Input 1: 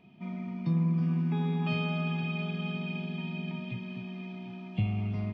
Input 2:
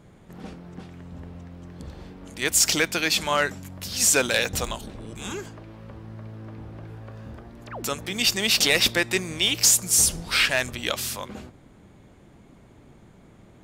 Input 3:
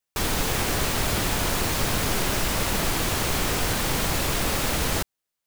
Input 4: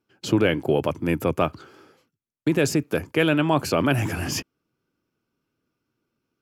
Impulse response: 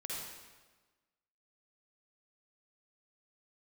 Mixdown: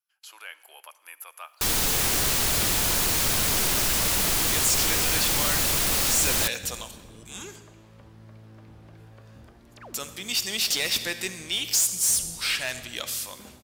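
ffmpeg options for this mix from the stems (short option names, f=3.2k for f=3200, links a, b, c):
-filter_complex "[1:a]adelay=2100,volume=-11dB,asplit=2[a][b];[b]volume=-10dB[c];[2:a]adelay=1450,volume=-2dB[d];[3:a]highpass=f=910:w=0.5412,highpass=f=910:w=1.3066,acrossover=split=2700[e][f];[f]acompressor=threshold=-37dB:ratio=4:attack=1:release=60[g];[e][g]amix=inputs=2:normalize=0,equalizer=f=11k:w=3.1:g=15,volume=-16dB,asplit=2[h][i];[i]volume=-16dB[j];[4:a]atrim=start_sample=2205[k];[c][j]amix=inputs=2:normalize=0[l];[l][k]afir=irnorm=-1:irlink=0[m];[a][d][h][m]amix=inputs=4:normalize=0,highshelf=f=3k:g=11,asoftclip=type=tanh:threshold=-17.5dB"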